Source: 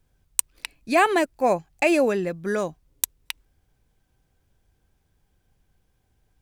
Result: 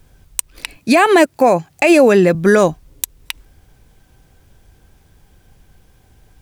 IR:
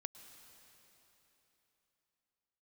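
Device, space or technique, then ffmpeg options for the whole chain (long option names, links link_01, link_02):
loud club master: -filter_complex "[0:a]asettb=1/sr,asplit=3[link_01][link_02][link_03];[link_01]atrim=end=0.774[link_04];[link_02]atrim=start=0.77:end=2.35,asetpts=PTS-STARTPTS,afade=type=in:duration=0.004:curve=qsin,afade=type=out:start_time=1.576:duration=0.004:curve=qsin,highpass=frequency=91:width=0.5412,highpass=frequency=91:width=1.3066[link_05];[link_03]atrim=start=2.346[link_06];[link_04][link_05]acrossfade=duration=0.004:curve1=hsin:curve2=qsin[link_07];[link_07][link_06]acrossfade=duration=0.004:curve1=qsin:curve2=hsin,acompressor=threshold=-23dB:ratio=3,asoftclip=type=hard:threshold=-9dB,alimiter=level_in=18.5dB:limit=-1dB:release=50:level=0:latency=1,volume=-1dB"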